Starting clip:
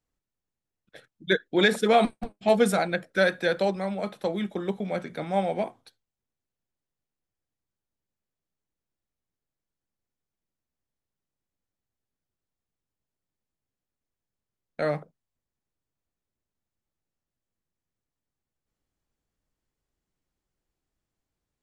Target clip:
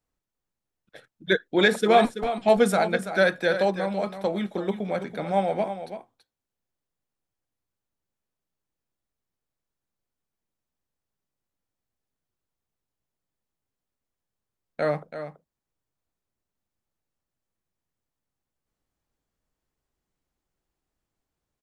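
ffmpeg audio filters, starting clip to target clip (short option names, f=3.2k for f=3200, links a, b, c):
-filter_complex "[0:a]acrossover=split=1200[a][b];[a]crystalizer=i=9.5:c=0[c];[c][b]amix=inputs=2:normalize=0,aecho=1:1:332:0.299"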